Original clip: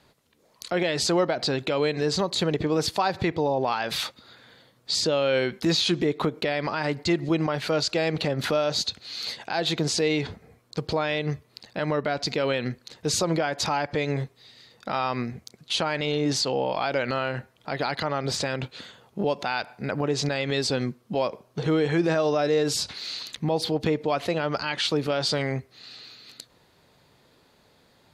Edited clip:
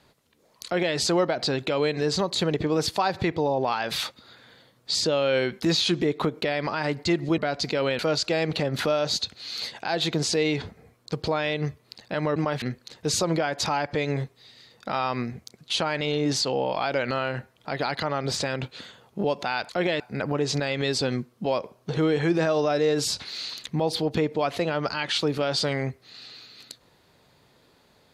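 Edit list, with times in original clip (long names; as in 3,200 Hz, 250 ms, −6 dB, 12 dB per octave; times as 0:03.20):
0:00.65–0:00.96: duplicate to 0:19.69
0:07.38–0:07.64: swap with 0:12.01–0:12.62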